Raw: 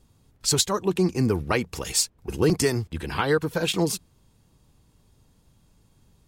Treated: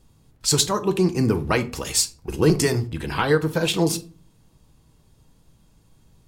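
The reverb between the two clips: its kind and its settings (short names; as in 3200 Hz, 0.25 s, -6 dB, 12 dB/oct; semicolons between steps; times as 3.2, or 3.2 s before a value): shoebox room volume 230 m³, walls furnished, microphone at 0.62 m; gain +2 dB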